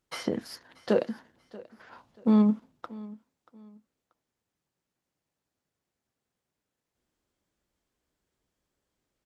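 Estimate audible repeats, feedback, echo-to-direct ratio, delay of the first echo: 2, 30%, −20.0 dB, 634 ms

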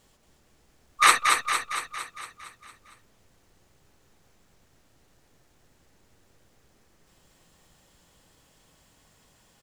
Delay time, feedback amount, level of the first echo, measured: 229 ms, 58%, −4.5 dB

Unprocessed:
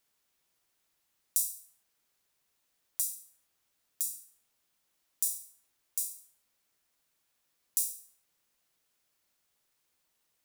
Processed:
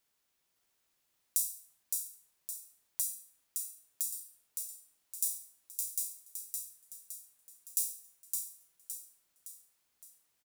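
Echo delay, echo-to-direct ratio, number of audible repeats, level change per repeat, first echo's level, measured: 564 ms, −3.0 dB, 5, −6.5 dB, −4.0 dB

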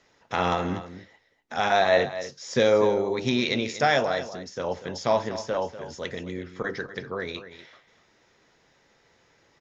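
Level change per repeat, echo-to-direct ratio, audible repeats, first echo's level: repeats not evenly spaced, −13.0 dB, 1, −13.0 dB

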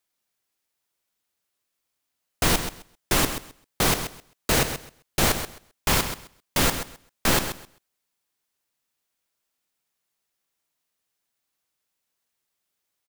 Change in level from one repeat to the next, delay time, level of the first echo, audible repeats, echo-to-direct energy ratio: −15.0 dB, 131 ms, −10.0 dB, 2, −10.0 dB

